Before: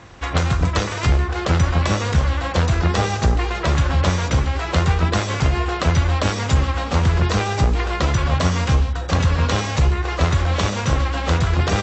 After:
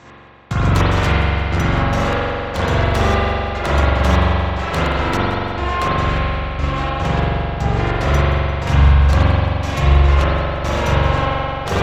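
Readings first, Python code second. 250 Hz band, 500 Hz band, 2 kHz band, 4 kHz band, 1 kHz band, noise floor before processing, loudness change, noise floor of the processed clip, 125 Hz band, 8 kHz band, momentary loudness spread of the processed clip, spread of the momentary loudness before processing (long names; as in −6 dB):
+2.0 dB, +4.0 dB, +3.5 dB, 0.0 dB, +4.0 dB, −26 dBFS, +2.5 dB, −25 dBFS, +1.5 dB, can't be measured, 7 LU, 2 LU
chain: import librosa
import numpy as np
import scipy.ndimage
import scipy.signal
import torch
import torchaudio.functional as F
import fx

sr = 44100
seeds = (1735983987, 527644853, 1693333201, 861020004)

y = fx.tracing_dist(x, sr, depth_ms=0.061)
y = fx.low_shelf(y, sr, hz=74.0, db=-5.5)
y = fx.rider(y, sr, range_db=10, speed_s=2.0)
y = fx.step_gate(y, sr, bpm=148, pattern='x....xxx.x', floor_db=-60.0, edge_ms=4.5)
y = fx.echo_feedback(y, sr, ms=174, feedback_pct=46, wet_db=-16)
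y = fx.rev_spring(y, sr, rt60_s=2.9, pass_ms=(43,), chirp_ms=65, drr_db=-9.5)
y = y * librosa.db_to_amplitude(-3.5)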